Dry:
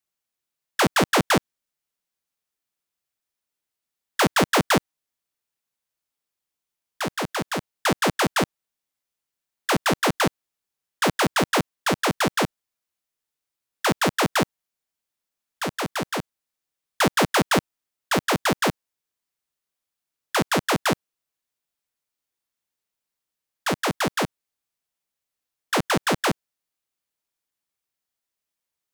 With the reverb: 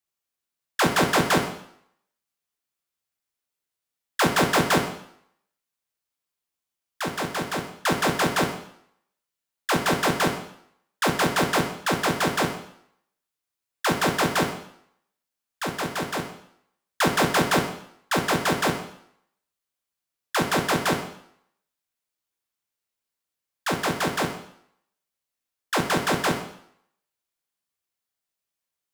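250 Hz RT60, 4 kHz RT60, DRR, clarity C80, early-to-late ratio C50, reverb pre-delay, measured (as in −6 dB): 0.65 s, 0.65 s, 3.0 dB, 10.5 dB, 7.5 dB, 9 ms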